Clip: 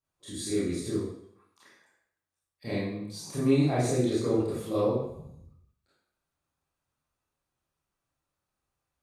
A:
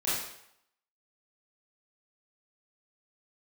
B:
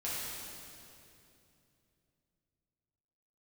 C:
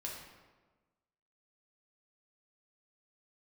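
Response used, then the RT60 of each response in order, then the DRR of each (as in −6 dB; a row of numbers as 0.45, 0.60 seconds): A; 0.75, 2.8, 1.3 seconds; −11.0, −9.5, −3.0 decibels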